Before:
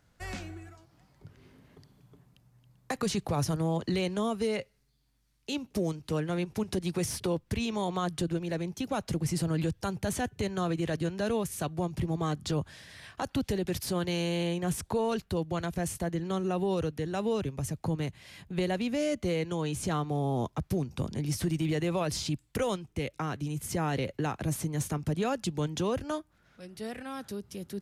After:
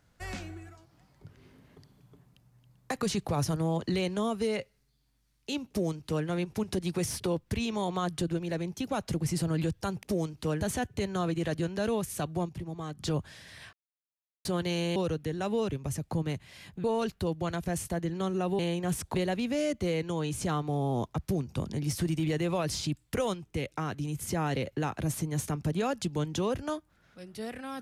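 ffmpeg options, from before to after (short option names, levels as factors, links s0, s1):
-filter_complex "[0:a]asplit=11[s0][s1][s2][s3][s4][s5][s6][s7][s8][s9][s10];[s0]atrim=end=10.032[s11];[s1]atrim=start=5.688:end=6.272[s12];[s2]atrim=start=10.028:end=11.912[s13];[s3]atrim=start=11.908:end=12.412,asetpts=PTS-STARTPTS,volume=0.422[s14];[s4]atrim=start=12.408:end=13.15,asetpts=PTS-STARTPTS,afade=t=out:st=0.738:d=0.004:c=hsin[s15];[s5]atrim=start=13.15:end=13.87,asetpts=PTS-STARTPTS,volume=0[s16];[s6]atrim=start=13.87:end=14.382,asetpts=PTS-STARTPTS,afade=t=in:d=0.004:c=hsin[s17];[s7]atrim=start=16.688:end=18.572[s18];[s8]atrim=start=14.938:end=16.692[s19];[s9]atrim=start=14.378:end=14.942[s20];[s10]atrim=start=18.568[s21];[s11][s12]acrossfade=d=0.004:c1=hsin:c2=hsin[s22];[s22][s13]acrossfade=d=0.004:c1=hsin:c2=hsin[s23];[s23][s14]acrossfade=d=0.004:c1=hsin:c2=hsin[s24];[s15][s16][s17]concat=n=3:v=0:a=1[s25];[s24][s25]acrossfade=d=0.004:c1=hsin:c2=hsin[s26];[s26][s18]acrossfade=d=0.004:c1=hsin:c2=hsin[s27];[s27][s19]acrossfade=d=0.004:c1=hsin:c2=hsin[s28];[s28][s20]acrossfade=d=0.004:c1=hsin:c2=hsin[s29];[s29][s21]acrossfade=d=0.004:c1=hsin:c2=hsin"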